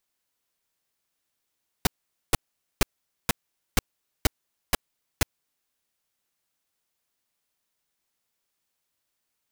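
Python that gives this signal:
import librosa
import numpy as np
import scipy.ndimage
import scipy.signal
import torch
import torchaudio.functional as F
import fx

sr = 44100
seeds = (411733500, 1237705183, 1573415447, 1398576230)

y = fx.noise_burst(sr, seeds[0], colour='pink', on_s=0.02, off_s=0.46, bursts=8, level_db=-18.5)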